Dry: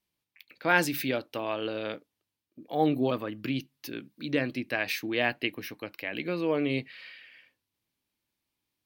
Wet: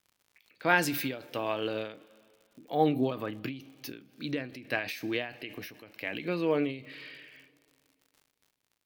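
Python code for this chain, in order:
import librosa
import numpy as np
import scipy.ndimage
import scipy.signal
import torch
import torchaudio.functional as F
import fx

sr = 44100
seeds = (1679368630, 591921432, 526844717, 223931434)

y = fx.rev_double_slope(x, sr, seeds[0], early_s=0.22, late_s=2.5, knee_db=-19, drr_db=13.5)
y = fx.dmg_crackle(y, sr, seeds[1], per_s=95.0, level_db=-47.0)
y = fx.end_taper(y, sr, db_per_s=110.0)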